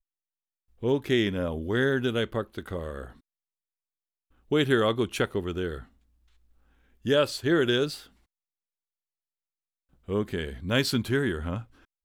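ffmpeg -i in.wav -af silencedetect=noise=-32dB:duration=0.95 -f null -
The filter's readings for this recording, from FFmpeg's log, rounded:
silence_start: 3.04
silence_end: 4.51 | silence_duration: 1.48
silence_start: 5.78
silence_end: 7.05 | silence_duration: 1.28
silence_start: 7.96
silence_end: 10.09 | silence_duration: 2.13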